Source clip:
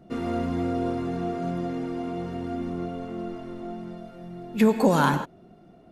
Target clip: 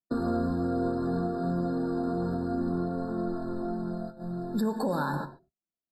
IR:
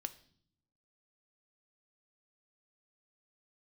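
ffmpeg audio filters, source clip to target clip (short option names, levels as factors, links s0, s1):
-filter_complex "[0:a]agate=range=0.00158:threshold=0.00891:ratio=16:detection=peak,asplit=2[s0][s1];[s1]acompressor=threshold=0.0224:ratio=6,volume=1.26[s2];[s0][s2]amix=inputs=2:normalize=0[s3];[1:a]atrim=start_sample=2205,afade=t=out:st=0.19:d=0.01,atrim=end_sample=8820[s4];[s3][s4]afir=irnorm=-1:irlink=0,alimiter=limit=0.106:level=0:latency=1:release=374,afftfilt=real='re*eq(mod(floor(b*sr/1024/1800),2),0)':imag='im*eq(mod(floor(b*sr/1024/1800),2),0)':win_size=1024:overlap=0.75"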